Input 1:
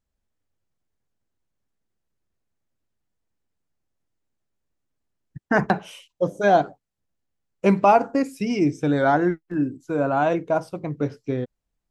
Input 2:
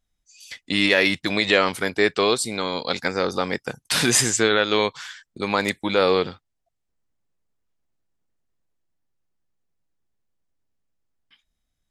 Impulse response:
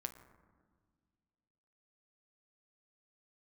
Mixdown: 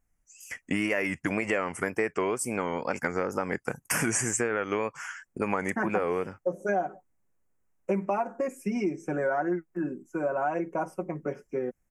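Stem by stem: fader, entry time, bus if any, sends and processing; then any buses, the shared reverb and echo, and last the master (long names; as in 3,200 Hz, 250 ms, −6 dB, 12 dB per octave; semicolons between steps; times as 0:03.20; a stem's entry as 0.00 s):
−4.0 dB, 0.25 s, no send, high-pass filter 190 Hz 24 dB per octave; comb filter 5.4 ms, depth 80%
+2.0 dB, 0.00 s, no send, tape wow and flutter 110 cents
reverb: not used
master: Butterworth band-reject 3,900 Hz, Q 1; downward compressor 5 to 1, threshold −25 dBFS, peak gain reduction 13 dB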